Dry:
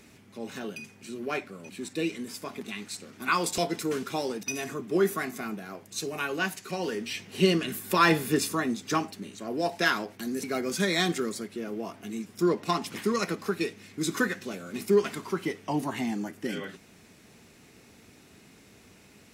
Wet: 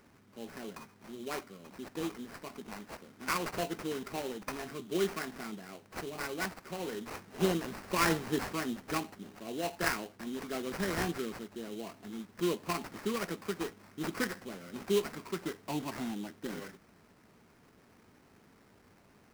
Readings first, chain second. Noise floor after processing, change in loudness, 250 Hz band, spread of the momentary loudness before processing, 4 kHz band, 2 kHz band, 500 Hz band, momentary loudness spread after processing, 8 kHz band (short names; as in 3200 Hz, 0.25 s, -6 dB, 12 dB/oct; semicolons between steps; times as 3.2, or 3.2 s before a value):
-63 dBFS, -7.0 dB, -7.0 dB, 13 LU, -8.0 dB, -7.5 dB, -7.0 dB, 14 LU, -7.0 dB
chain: sample-rate reducer 3500 Hz, jitter 20%; gain -7 dB